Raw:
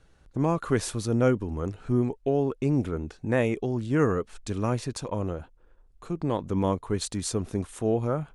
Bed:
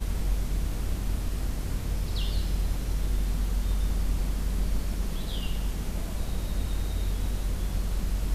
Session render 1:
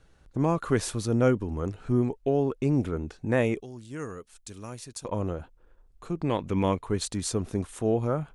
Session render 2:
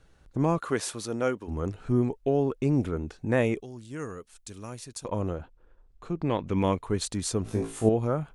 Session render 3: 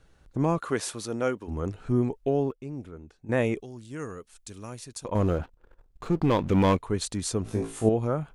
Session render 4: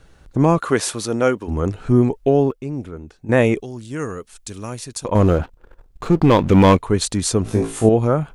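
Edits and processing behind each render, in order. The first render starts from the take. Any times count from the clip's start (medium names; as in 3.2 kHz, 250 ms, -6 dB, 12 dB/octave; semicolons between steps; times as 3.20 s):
3.60–5.05 s: pre-emphasis filter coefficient 0.8; 6.24–6.85 s: peaking EQ 2.4 kHz +10.5 dB 0.76 oct
0.59–1.47 s: high-pass 300 Hz -> 720 Hz 6 dB/octave; 5.38–6.51 s: distance through air 68 m; 7.43–7.89 s: flutter echo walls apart 3.1 m, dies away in 0.34 s
2.17–3.63 s: dip -12.5 dB, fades 0.34 s logarithmic; 5.15–6.77 s: waveshaping leveller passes 2
trim +10 dB; peak limiter -2 dBFS, peak gain reduction 2.5 dB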